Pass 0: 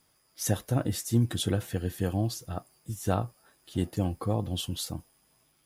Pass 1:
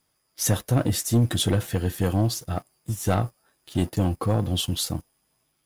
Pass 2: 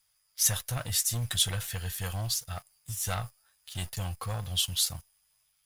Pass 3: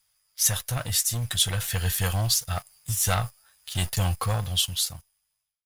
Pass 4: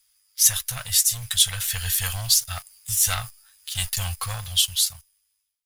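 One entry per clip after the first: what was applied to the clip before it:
waveshaping leveller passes 2
amplifier tone stack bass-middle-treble 10-0-10; trim +2 dB
fade out at the end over 1.54 s; gain riding within 4 dB 0.5 s; trim +6 dB
amplifier tone stack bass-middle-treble 10-0-10; trim +6 dB

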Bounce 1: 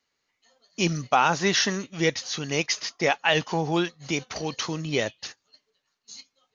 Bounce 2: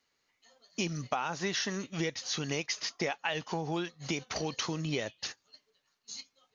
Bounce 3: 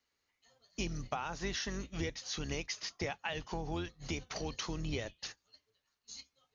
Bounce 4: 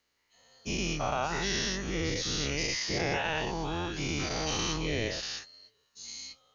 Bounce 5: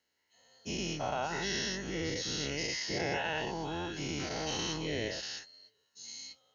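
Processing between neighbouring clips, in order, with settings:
compression 6:1, threshold -30 dBFS, peak gain reduction 14 dB
octave divider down 2 oct, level 0 dB; trim -5.5 dB
every event in the spectrogram widened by 240 ms
comb of notches 1.2 kHz; trim -2.5 dB

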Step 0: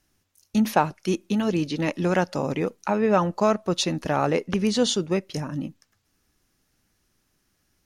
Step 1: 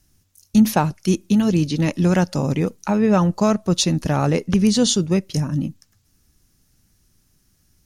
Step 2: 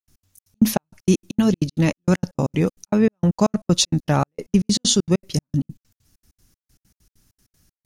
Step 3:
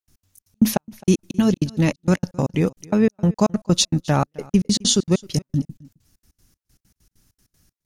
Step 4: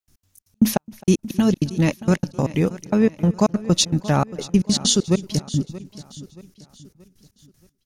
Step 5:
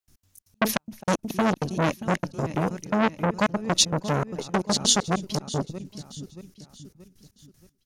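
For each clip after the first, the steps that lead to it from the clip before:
tone controls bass +12 dB, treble +9 dB
trance gate ".x.xx.x.xx..x.x" 195 bpm -60 dB; trim +1.5 dB
delay 263 ms -23.5 dB
feedback delay 628 ms, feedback 42%, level -17 dB
transformer saturation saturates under 2.2 kHz

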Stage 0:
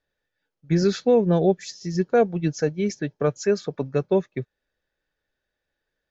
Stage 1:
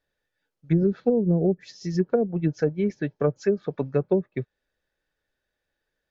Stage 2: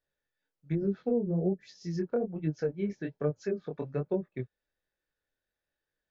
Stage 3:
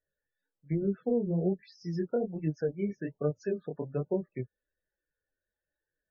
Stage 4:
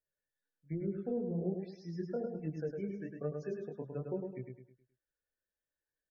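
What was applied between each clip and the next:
low-pass that closes with the level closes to 350 Hz, closed at -15 dBFS
chorus 1.2 Hz, delay 19.5 ms, depth 6.1 ms; trim -5 dB
loudest bins only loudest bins 32
feedback delay 105 ms, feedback 38%, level -5 dB; trim -8 dB

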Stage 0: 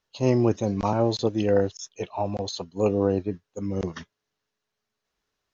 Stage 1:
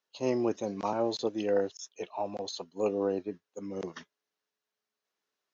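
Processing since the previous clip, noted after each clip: high-pass 260 Hz 12 dB/octave; trim -5.5 dB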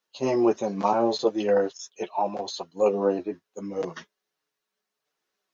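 dynamic bell 940 Hz, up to +5 dB, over -44 dBFS, Q 0.83; chorus voices 6, 0.41 Hz, delay 10 ms, depth 4.8 ms; trim +7.5 dB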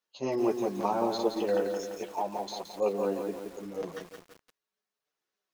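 bit-crushed delay 172 ms, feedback 55%, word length 7-bit, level -5.5 dB; trim -6.5 dB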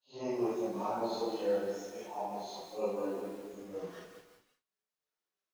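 phase randomisation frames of 200 ms; trim -6 dB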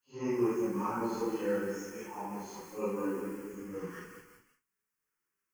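static phaser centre 1.6 kHz, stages 4; trim +7.5 dB

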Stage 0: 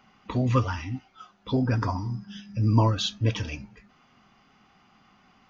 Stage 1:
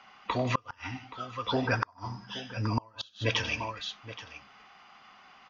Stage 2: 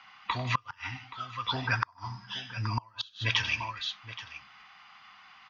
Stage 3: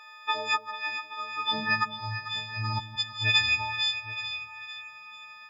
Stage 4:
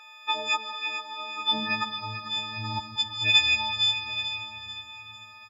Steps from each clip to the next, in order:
three-band isolator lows -16 dB, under 540 Hz, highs -21 dB, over 6.4 kHz; multi-tap echo 96/152/825 ms -14.5/-18/-15 dB; inverted gate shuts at -21 dBFS, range -33 dB; trim +7 dB
graphic EQ 125/250/500/1000/2000/4000 Hz +5/-3/-11/+6/+6/+7 dB; trim -4.5 dB
partials quantised in pitch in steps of 6 st; high-pass sweep 420 Hz -> 70 Hz, 1.11–2.44 s; two-band feedback delay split 820 Hz, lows 169 ms, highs 444 ms, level -11.5 dB; trim -3 dB
comb 3.7 ms, depth 62%; on a send at -8 dB: reverberation RT60 4.7 s, pre-delay 95 ms

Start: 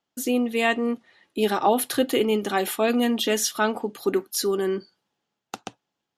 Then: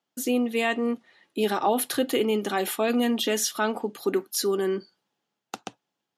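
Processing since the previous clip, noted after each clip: high-pass 120 Hz; in parallel at +1 dB: peak limiter -15 dBFS, peak gain reduction 7.5 dB; on the sum: trim -7.5 dB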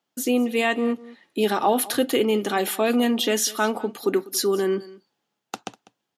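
delay 198 ms -20 dB; trim +3 dB

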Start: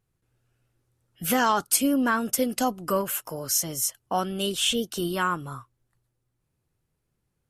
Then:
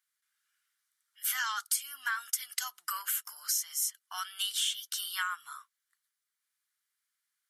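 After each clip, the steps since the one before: inverse Chebyshev high-pass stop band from 550 Hz, stop band 50 dB; band-stop 2.6 kHz, Q 6.1; compression 4:1, threshold -32 dBFS, peak gain reduction 13 dB; trim +2.5 dB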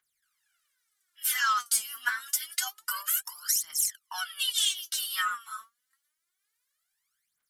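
phaser 0.27 Hz, delay 4.7 ms, feedback 80%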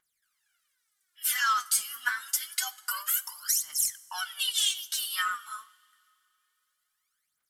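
wow and flutter 24 cents; reverberation, pre-delay 3 ms, DRR 15.5 dB

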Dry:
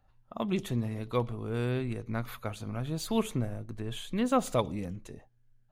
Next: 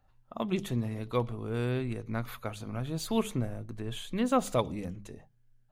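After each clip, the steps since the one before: hum notches 50/100/150/200 Hz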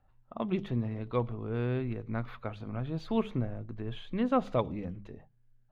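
distance through air 300 m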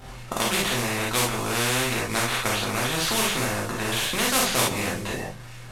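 CVSD coder 64 kbps; gated-style reverb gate 90 ms flat, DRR -4.5 dB; spectrum-flattening compressor 4:1

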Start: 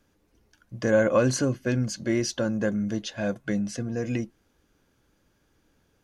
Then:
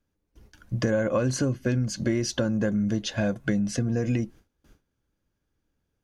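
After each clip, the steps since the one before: gate with hold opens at -55 dBFS; bass shelf 170 Hz +8 dB; compression 5:1, threshold -29 dBFS, peak gain reduction 13 dB; trim +6.5 dB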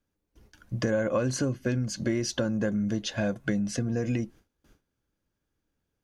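bass shelf 150 Hz -3.5 dB; trim -1.5 dB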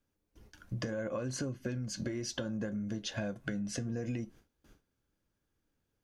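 compression, threshold -33 dBFS, peak gain reduction 10.5 dB; flange 0.7 Hz, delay 7.5 ms, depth 3.7 ms, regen -75%; trim +3.5 dB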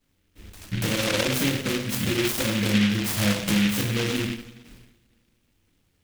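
two-slope reverb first 0.69 s, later 1.8 s, DRR -8 dB; delay time shaken by noise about 2.4 kHz, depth 0.27 ms; trim +4.5 dB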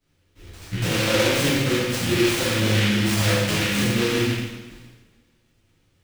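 plate-style reverb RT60 0.97 s, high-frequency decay 0.95×, DRR -6 dB; sliding maximum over 3 samples; trim -2.5 dB

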